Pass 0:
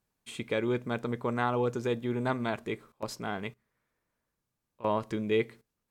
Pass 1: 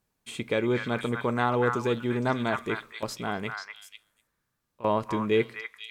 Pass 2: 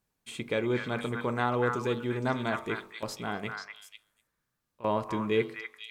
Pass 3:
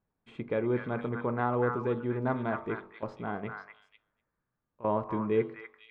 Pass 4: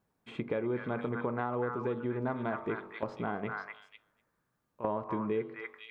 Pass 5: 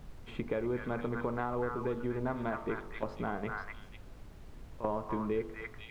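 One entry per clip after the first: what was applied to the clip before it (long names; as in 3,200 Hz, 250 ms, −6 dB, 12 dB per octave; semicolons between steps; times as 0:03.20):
echo through a band-pass that steps 245 ms, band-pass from 1,500 Hz, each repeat 1.4 octaves, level 0 dB; level +3.5 dB
hum removal 47.8 Hz, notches 27; level −2.5 dB
low-pass filter 1,400 Hz 12 dB per octave
low-shelf EQ 67 Hz −11.5 dB; downward compressor 4 to 1, threshold −38 dBFS, peak gain reduction 13.5 dB; level +6.5 dB
background noise brown −46 dBFS; level −1 dB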